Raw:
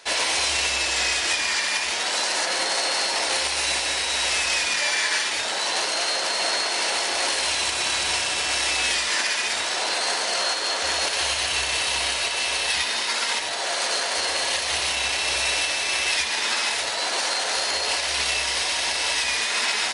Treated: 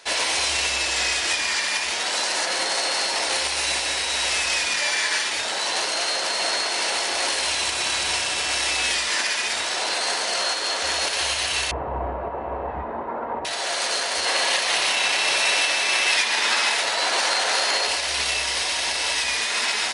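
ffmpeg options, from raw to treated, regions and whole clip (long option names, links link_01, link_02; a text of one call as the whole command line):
ffmpeg -i in.wav -filter_complex "[0:a]asettb=1/sr,asplit=3[link_01][link_02][link_03];[link_01]atrim=end=11.714[link_04];[link_02]atrim=start=11.71:end=13.45,asetpts=PTS-STARTPTS,afade=type=in:duration=0.004:curve=qsin,afade=type=out:start_time=1.736:duration=0.004:curve=qsin,lowpass=frequency=1000:width=0.5412,lowpass=frequency=1000:width=1.3066,lowshelf=frequency=260:gain=7,acontrast=34[link_05];[link_03]atrim=start=13.446[link_06];[link_04][link_05]acrossfade=duration=0.004:curve1=hsin:curve2=qsin[link_07];[link_07][link_06]acrossfade=duration=0.004:curve1=qsin:curve2=hsin,asettb=1/sr,asplit=3[link_08][link_09][link_10];[link_08]atrim=end=14.264[link_11];[link_09]atrim=start=14.26:end=17.87,asetpts=PTS-STARTPTS,afade=type=in:duration=0.004:curve=qsin,afade=type=out:start_time=3.606:duration=0.004:curve=qsin,highpass=frequency=130:width=0.5412,highpass=frequency=130:width=1.3066,equalizer=frequency=1300:width=0.34:gain=4.5[link_12];[link_10]atrim=start=17.866[link_13];[link_11][link_12]acrossfade=duration=0.004:curve1=hsin:curve2=qsin[link_14];[link_14][link_13]acrossfade=duration=0.004:curve1=qsin:curve2=hsin" out.wav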